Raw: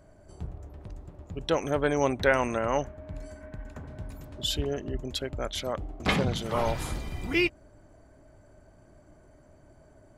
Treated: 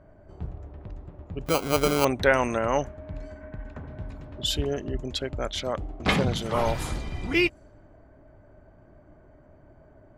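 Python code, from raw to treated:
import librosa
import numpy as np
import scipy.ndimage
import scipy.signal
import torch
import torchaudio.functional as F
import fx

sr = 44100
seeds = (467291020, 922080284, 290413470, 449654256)

y = fx.env_lowpass(x, sr, base_hz=2000.0, full_db=-25.5)
y = fx.sample_hold(y, sr, seeds[0], rate_hz=1800.0, jitter_pct=0, at=(1.46, 2.05))
y = y * 10.0 ** (2.5 / 20.0)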